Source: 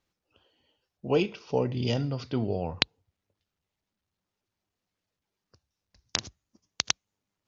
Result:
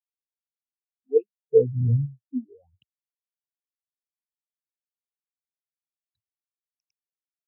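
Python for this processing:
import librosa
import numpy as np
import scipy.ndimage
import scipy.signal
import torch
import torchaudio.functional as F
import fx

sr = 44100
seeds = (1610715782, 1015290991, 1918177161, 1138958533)

y = fx.phaser_stages(x, sr, stages=8, low_hz=130.0, high_hz=4500.0, hz=0.73, feedback_pct=45)
y = fx.spectral_expand(y, sr, expansion=4.0)
y = y * 10.0 ** (-3.5 / 20.0)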